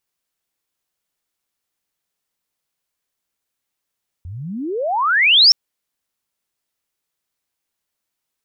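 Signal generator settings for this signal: sweep logarithmic 81 Hz -> 5.6 kHz -29 dBFS -> -5.5 dBFS 1.27 s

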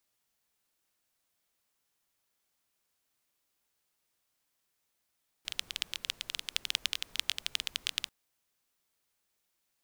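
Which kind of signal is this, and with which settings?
rain from filtered ticks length 2.64 s, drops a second 14, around 3.2 kHz, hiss -21 dB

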